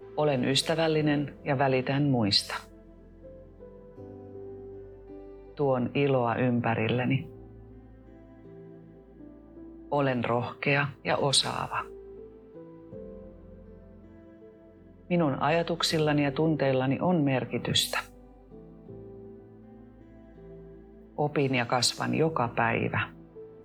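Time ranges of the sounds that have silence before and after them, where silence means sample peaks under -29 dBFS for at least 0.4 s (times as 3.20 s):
5.59–7.20 s
9.92–11.81 s
15.11–18.00 s
21.19–23.04 s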